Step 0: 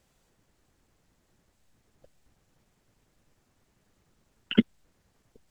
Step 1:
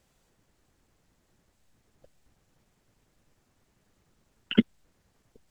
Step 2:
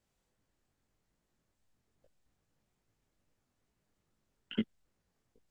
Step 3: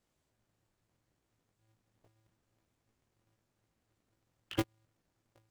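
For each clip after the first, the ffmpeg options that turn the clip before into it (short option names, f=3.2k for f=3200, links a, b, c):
-af anull
-af "flanger=delay=18:depth=6.9:speed=2.4,volume=-8.5dB"
-af "aeval=exprs='val(0)*sgn(sin(2*PI*110*n/s))':c=same"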